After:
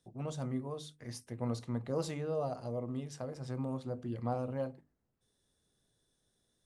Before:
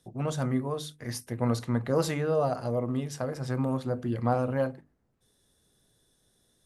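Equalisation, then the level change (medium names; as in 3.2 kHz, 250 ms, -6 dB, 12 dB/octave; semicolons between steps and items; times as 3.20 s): low-pass 10 kHz 24 dB/octave; dynamic bell 1.6 kHz, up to -7 dB, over -51 dBFS, Q 1.8; -8.5 dB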